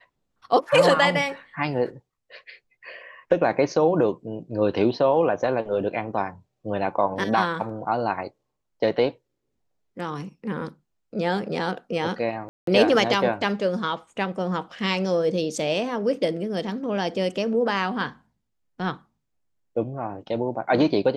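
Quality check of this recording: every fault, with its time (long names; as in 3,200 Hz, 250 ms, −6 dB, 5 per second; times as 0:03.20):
0:12.49–0:12.67: drop-out 183 ms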